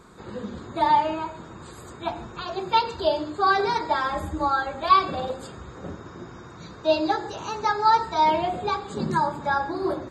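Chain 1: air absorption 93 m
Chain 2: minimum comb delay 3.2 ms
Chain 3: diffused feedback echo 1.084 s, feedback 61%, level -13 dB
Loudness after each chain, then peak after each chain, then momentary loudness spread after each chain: -24.5, -25.5, -24.5 LUFS; -6.5, -8.5, -6.0 dBFS; 20, 21, 15 LU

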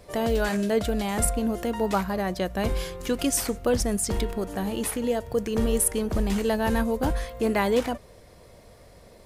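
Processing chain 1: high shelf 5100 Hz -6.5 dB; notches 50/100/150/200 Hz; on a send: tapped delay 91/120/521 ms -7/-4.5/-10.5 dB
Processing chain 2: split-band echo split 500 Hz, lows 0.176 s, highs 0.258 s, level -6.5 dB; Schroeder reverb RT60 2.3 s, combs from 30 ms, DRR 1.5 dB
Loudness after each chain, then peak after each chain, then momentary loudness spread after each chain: -25.5, -23.0 LUFS; -10.5, -7.5 dBFS; 5, 5 LU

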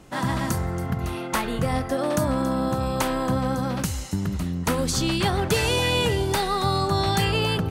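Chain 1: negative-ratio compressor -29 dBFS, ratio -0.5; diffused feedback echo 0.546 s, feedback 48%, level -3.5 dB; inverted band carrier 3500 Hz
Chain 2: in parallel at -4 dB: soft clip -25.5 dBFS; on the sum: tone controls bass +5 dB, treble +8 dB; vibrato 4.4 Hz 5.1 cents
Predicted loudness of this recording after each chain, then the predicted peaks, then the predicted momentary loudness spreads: -25.0, -19.0 LUFS; -11.0, -5.0 dBFS; 8, 5 LU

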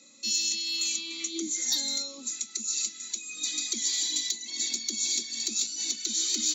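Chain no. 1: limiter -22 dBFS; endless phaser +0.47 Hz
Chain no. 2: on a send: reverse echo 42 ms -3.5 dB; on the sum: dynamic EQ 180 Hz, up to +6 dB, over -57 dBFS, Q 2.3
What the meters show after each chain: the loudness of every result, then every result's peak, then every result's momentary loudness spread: -33.5, -26.5 LUFS; -22.0, -13.0 dBFS; 7, 6 LU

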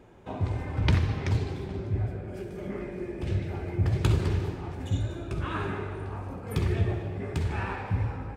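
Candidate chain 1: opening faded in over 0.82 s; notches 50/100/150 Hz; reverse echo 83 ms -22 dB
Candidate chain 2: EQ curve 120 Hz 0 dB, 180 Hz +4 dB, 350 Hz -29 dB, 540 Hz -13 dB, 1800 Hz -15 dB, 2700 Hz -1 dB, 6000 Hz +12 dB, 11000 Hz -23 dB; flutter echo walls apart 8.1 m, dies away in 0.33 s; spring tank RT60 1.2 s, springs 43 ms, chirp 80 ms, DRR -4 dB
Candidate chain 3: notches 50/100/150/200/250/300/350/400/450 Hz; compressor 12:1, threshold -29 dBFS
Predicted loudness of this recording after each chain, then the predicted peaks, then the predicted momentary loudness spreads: -31.5, -27.5, -36.0 LUFS; -10.5, -5.5, -18.0 dBFS; 11, 12, 4 LU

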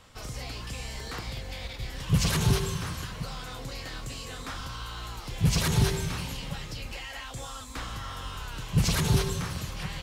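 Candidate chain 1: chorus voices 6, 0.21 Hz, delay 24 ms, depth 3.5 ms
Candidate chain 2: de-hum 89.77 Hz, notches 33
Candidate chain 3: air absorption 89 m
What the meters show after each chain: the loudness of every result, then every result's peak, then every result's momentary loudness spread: -34.0, -31.5, -32.0 LUFS; -12.5, -13.0, -13.5 dBFS; 13, 13, 14 LU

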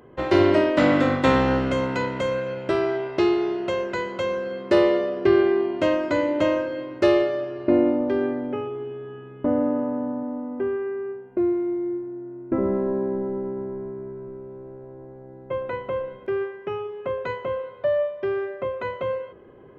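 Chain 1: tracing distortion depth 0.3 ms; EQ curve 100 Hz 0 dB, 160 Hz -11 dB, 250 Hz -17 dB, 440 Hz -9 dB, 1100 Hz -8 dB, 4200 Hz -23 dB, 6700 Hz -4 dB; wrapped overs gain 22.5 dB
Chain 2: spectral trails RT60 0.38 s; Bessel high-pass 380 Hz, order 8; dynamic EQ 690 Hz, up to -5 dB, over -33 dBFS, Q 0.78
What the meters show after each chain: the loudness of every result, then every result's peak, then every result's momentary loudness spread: -34.0, -29.0 LUFS; -22.5, -11.0 dBFS; 16, 14 LU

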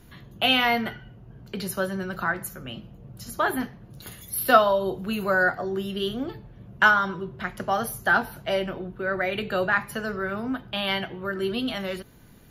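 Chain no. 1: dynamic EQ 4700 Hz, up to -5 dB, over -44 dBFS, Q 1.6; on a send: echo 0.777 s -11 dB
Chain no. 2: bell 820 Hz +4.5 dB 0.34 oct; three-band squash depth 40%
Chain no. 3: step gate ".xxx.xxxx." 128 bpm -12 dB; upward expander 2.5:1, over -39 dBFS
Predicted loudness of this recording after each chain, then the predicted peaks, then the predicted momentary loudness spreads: -25.5, -26.0, -29.0 LUFS; -3.0, -6.0, -4.0 dBFS; 17, 16, 24 LU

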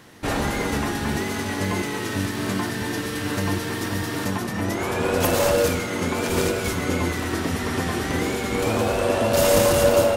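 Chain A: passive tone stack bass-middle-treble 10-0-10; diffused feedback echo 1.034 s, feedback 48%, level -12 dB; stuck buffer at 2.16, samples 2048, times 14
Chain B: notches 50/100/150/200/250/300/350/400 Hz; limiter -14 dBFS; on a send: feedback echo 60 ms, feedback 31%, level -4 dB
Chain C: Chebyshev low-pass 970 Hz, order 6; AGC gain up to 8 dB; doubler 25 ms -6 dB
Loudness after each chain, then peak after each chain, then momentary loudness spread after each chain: -30.5, -23.5, -17.5 LUFS; -12.0, -10.5, -2.0 dBFS; 7, 4, 7 LU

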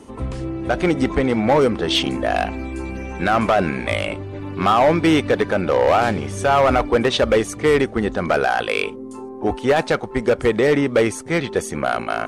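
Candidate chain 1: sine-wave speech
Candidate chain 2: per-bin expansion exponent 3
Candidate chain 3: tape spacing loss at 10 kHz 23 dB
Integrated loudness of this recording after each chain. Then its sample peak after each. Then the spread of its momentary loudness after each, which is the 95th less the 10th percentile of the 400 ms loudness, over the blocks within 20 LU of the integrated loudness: -19.0, -26.0, -21.0 LUFS; -3.0, -11.0, -10.0 dBFS; 14, 16, 10 LU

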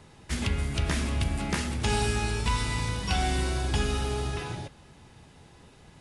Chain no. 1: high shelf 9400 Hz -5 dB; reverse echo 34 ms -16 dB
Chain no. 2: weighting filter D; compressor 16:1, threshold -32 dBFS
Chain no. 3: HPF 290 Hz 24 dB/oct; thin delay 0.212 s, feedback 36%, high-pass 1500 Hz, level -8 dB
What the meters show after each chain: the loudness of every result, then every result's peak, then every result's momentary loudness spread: -29.5, -34.5, -32.0 LUFS; -15.0, -16.5, -16.5 dBFS; 7, 16, 9 LU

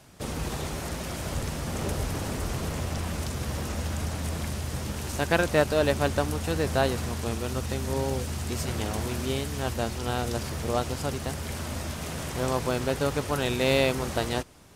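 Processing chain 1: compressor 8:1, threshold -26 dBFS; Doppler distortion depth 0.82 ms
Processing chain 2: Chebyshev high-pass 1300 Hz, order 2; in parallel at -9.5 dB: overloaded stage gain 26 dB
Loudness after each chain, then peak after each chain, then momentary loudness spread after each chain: -33.0, -33.0 LUFS; -16.0, -10.5 dBFS; 3, 8 LU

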